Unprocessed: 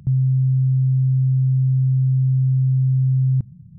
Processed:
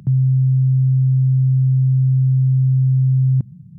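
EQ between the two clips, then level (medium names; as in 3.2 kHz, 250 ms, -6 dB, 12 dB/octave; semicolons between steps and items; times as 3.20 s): high-pass 130 Hz; +5.5 dB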